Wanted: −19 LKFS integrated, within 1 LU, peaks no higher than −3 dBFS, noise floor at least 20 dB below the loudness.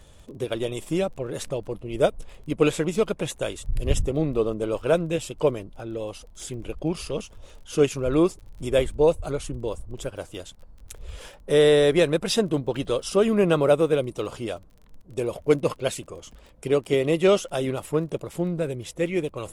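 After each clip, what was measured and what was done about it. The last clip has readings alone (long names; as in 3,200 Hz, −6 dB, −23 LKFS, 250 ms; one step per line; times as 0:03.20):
crackle rate 27 per second; integrated loudness −24.5 LKFS; sample peak −6.0 dBFS; target loudness −19.0 LKFS
→ click removal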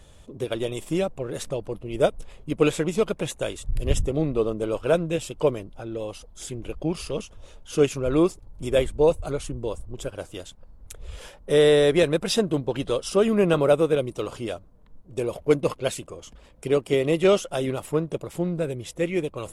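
crackle rate 0 per second; integrated loudness −24.5 LKFS; sample peak −6.0 dBFS; target loudness −19.0 LKFS
→ level +5.5 dB
brickwall limiter −3 dBFS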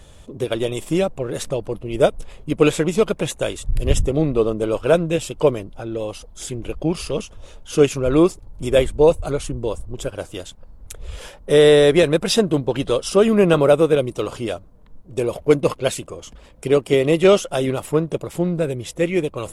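integrated loudness −19.5 LKFS; sample peak −3.0 dBFS; background noise floor −45 dBFS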